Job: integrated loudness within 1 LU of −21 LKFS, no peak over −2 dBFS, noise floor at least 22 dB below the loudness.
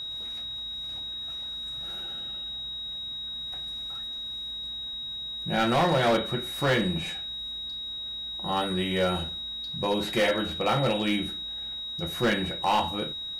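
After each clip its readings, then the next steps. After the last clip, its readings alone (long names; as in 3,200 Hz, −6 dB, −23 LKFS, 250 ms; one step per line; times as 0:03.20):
share of clipped samples 0.8%; peaks flattened at −18.5 dBFS; interfering tone 3,800 Hz; level of the tone −33 dBFS; integrated loudness −28.5 LKFS; sample peak −18.5 dBFS; target loudness −21.0 LKFS
→ clipped peaks rebuilt −18.5 dBFS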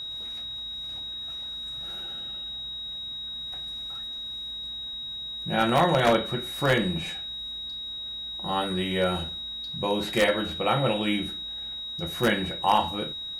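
share of clipped samples 0.0%; interfering tone 3,800 Hz; level of the tone −33 dBFS
→ notch filter 3,800 Hz, Q 30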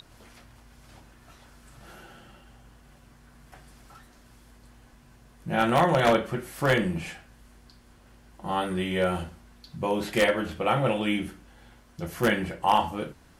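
interfering tone none found; integrated loudness −26.0 LKFS; sample peak −9.0 dBFS; target loudness −21.0 LKFS
→ level +5 dB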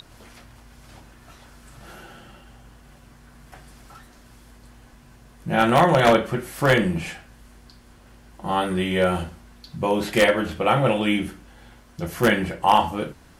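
integrated loudness −21.0 LKFS; sample peak −4.0 dBFS; background noise floor −51 dBFS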